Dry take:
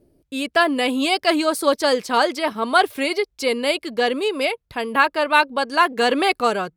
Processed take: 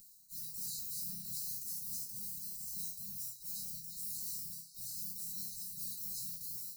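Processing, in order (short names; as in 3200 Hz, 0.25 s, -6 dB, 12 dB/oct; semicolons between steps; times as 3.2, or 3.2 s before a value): sample sorter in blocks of 8 samples; spectral gate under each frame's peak -25 dB weak; HPF 160 Hz 6 dB/oct; spectral gate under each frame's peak -25 dB weak; upward compressor, threshold -53 dBFS; sample leveller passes 5; resonator bank C3 major, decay 0.37 s; transient shaper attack -4 dB, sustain +8 dB; brick-wall FIR band-stop 230–3800 Hz; delay with a stepping band-pass 0.132 s, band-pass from 950 Hz, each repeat 0.7 oct, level -2 dB; gain +16.5 dB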